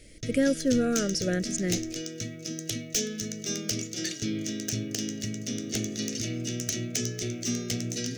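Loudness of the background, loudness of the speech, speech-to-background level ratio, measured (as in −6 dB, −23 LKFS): −32.0 LKFS, −28.0 LKFS, 4.0 dB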